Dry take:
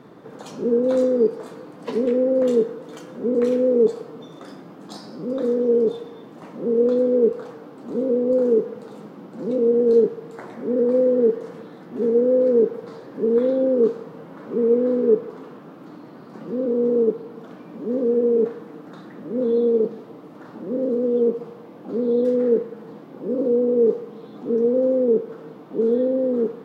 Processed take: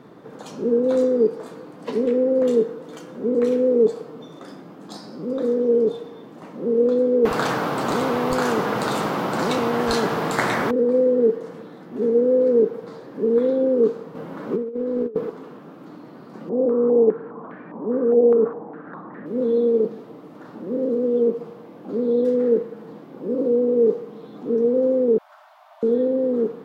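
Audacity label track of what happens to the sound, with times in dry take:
7.250000	10.710000	spectrum-flattening compressor 4:1
14.150000	15.300000	compressor with a negative ratio -23 dBFS, ratio -0.5
16.490000	19.260000	step-sequenced low-pass 4.9 Hz 720–1800 Hz
25.180000	25.830000	brick-wall FIR high-pass 590 Hz

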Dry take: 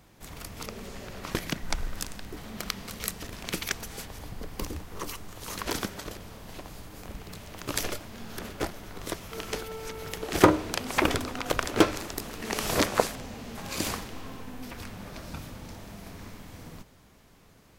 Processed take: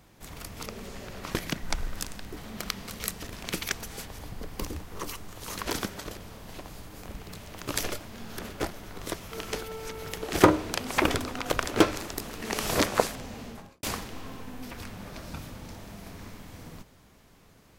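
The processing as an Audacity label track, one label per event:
13.410000	13.830000	studio fade out

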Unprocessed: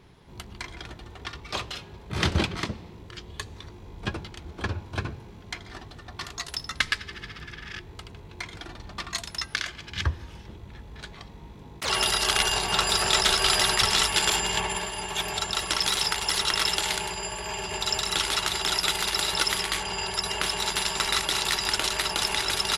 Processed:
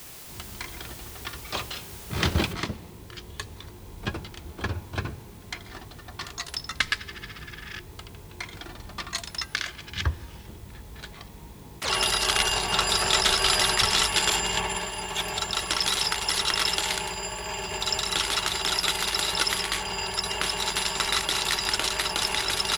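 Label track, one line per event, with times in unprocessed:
2.530000	2.530000	noise floor step -44 dB -56 dB

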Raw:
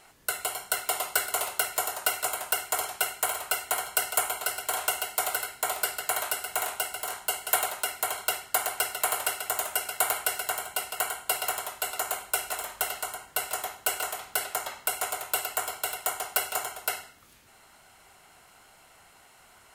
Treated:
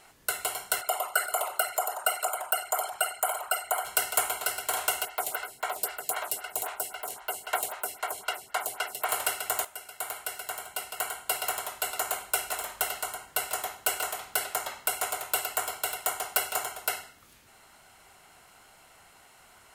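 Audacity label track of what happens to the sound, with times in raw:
0.810000	3.850000	resonances exaggerated exponent 2
5.050000	9.090000	lamp-driven phase shifter 3.8 Hz
9.650000	11.760000	fade in, from -14.5 dB

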